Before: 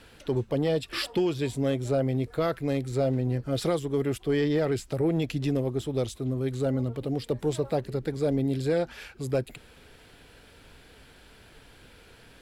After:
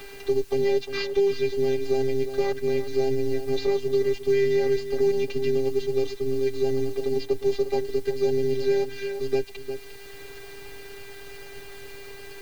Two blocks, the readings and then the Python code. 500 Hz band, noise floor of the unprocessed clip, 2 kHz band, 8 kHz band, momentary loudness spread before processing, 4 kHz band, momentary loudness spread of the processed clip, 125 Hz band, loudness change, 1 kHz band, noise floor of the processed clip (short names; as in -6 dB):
+6.0 dB, -54 dBFS, +3.0 dB, n/a, 4 LU, +1.0 dB, 18 LU, -8.0 dB, +3.0 dB, 0.0 dB, -41 dBFS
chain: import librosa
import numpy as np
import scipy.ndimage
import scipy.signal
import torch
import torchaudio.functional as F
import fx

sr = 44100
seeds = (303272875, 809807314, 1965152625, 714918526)

p1 = fx.cvsd(x, sr, bps=32000)
p2 = fx.peak_eq(p1, sr, hz=1400.0, db=-7.5, octaves=0.39)
p3 = fx.robotise(p2, sr, hz=399.0)
p4 = fx.vibrato(p3, sr, rate_hz=9.2, depth_cents=5.7)
p5 = fx.quant_dither(p4, sr, seeds[0], bits=8, dither='triangular')
p6 = p4 + (p5 * librosa.db_to_amplitude(-10.5))
p7 = p6 + 0.86 * np.pad(p6, (int(7.1 * sr / 1000.0), 0))[:len(p6)]
p8 = p7 + 10.0 ** (-12.0 / 20.0) * np.pad(p7, (int(353 * sr / 1000.0), 0))[:len(p7)]
y = fx.band_squash(p8, sr, depth_pct=40)